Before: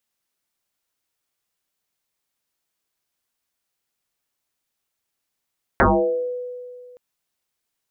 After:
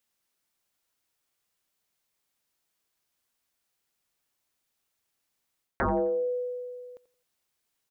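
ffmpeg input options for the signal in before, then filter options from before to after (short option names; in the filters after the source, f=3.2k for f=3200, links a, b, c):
-f lavfi -i "aevalsrc='0.299*pow(10,-3*t/2.18)*sin(2*PI*495*t+9.7*pow(10,-3*t/0.65)*sin(2*PI*0.3*495*t))':d=1.17:s=44100"
-af "areverse,acompressor=threshold=-25dB:ratio=10,areverse,aecho=1:1:86|172|258:0.133|0.0467|0.0163"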